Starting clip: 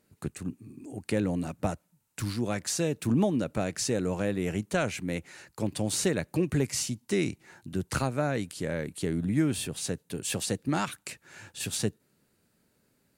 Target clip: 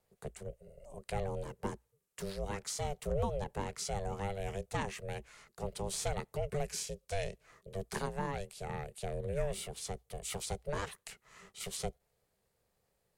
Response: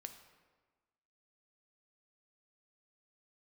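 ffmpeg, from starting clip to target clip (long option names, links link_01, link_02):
-af "aeval=exprs='val(0)*sin(2*PI*350*n/s)':channel_layout=same,afreqshift=-59,volume=-5.5dB"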